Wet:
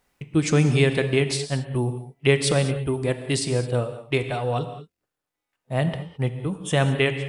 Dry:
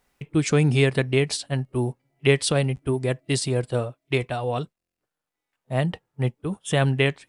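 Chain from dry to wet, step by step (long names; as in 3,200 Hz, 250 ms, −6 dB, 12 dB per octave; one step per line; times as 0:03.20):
reverb whose tail is shaped and stops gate 240 ms flat, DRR 8.5 dB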